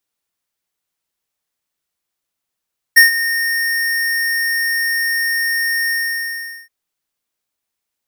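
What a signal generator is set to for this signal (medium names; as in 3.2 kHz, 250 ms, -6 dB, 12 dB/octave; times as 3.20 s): ADSR square 1.84 kHz, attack 16 ms, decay 128 ms, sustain -13.5 dB, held 2.94 s, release 784 ms -4.5 dBFS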